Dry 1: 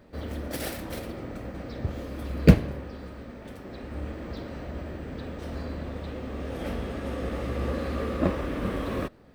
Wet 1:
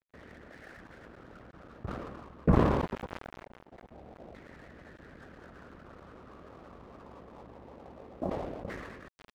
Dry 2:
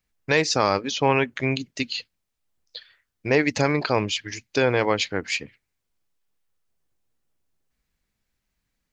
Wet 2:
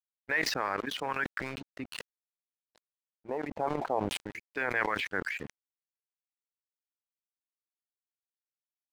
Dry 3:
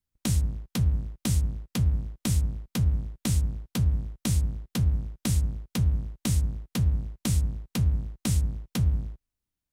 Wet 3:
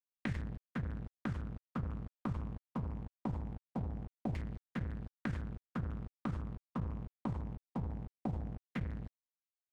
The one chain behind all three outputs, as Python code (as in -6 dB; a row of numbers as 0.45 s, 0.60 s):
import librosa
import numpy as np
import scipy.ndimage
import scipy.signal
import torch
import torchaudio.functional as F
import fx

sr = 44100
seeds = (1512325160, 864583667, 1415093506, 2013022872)

y = fx.hpss(x, sr, part='harmonic', gain_db=-16)
y = fx.level_steps(y, sr, step_db=15)
y = fx.filter_lfo_lowpass(y, sr, shape='saw_down', hz=0.23, low_hz=710.0, high_hz=2000.0, q=3.5)
y = np.sign(y) * np.maximum(np.abs(y) - 10.0 ** (-52.5 / 20.0), 0.0)
y = fx.sustainer(y, sr, db_per_s=33.0)
y = y * librosa.db_to_amplitude(-5.0)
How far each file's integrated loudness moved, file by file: -2.5 LU, -10.0 LU, -14.0 LU